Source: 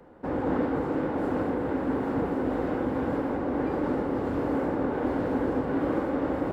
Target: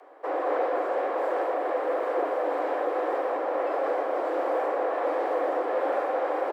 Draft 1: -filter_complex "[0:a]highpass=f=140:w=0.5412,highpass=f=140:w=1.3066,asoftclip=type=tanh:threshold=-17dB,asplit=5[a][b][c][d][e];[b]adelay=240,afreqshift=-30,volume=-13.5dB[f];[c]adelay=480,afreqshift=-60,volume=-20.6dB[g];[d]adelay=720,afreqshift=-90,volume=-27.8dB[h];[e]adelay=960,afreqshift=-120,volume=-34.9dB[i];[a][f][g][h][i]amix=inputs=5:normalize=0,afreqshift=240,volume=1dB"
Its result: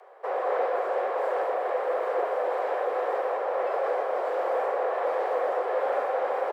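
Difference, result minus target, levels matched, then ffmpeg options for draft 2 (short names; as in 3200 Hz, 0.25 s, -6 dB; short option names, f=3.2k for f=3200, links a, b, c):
125 Hz band -7.0 dB
-filter_complex "[0:a]highpass=f=37:w=0.5412,highpass=f=37:w=1.3066,asoftclip=type=tanh:threshold=-17dB,asplit=5[a][b][c][d][e];[b]adelay=240,afreqshift=-30,volume=-13.5dB[f];[c]adelay=480,afreqshift=-60,volume=-20.6dB[g];[d]adelay=720,afreqshift=-90,volume=-27.8dB[h];[e]adelay=960,afreqshift=-120,volume=-34.9dB[i];[a][f][g][h][i]amix=inputs=5:normalize=0,afreqshift=240,volume=1dB"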